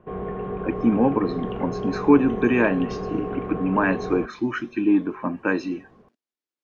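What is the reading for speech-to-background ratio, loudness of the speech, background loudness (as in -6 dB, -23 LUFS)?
7.0 dB, -23.5 LUFS, -30.5 LUFS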